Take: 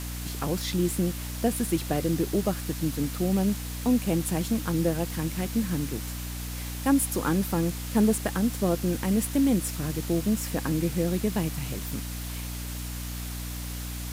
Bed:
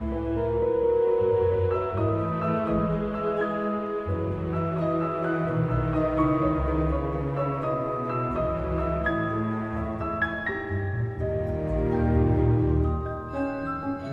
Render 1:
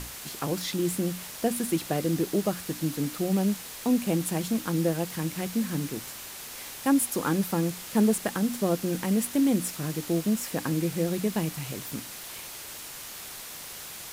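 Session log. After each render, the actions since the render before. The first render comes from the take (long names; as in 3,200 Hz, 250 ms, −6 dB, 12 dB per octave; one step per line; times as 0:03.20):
mains-hum notches 60/120/180/240/300 Hz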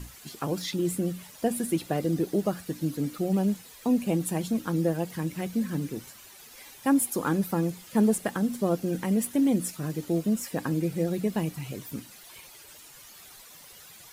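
broadband denoise 12 dB, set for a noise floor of −41 dBFS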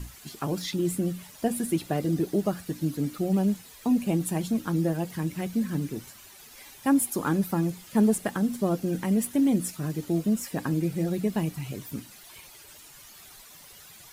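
low-shelf EQ 120 Hz +4.5 dB
notch filter 500 Hz, Q 12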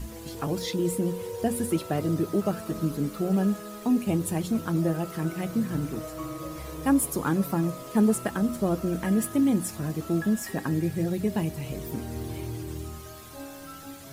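mix in bed −13 dB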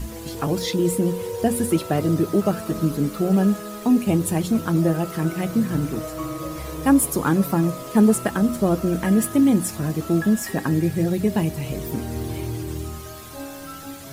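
level +6 dB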